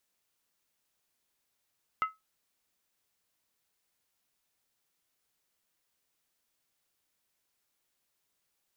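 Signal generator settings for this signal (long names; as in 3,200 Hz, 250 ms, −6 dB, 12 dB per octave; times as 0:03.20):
struck skin, lowest mode 1,290 Hz, decay 0.19 s, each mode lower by 10 dB, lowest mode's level −22 dB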